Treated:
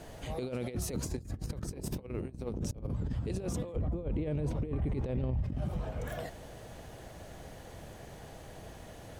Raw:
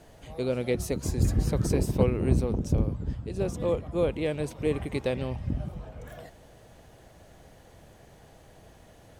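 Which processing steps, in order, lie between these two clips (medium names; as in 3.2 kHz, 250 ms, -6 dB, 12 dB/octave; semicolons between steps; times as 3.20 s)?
compressor with a negative ratio -32 dBFS, ratio -0.5; 3.76–5.44 s: tilt EQ -3.5 dB/octave; peak limiter -26 dBFS, peak gain reduction 15.5 dB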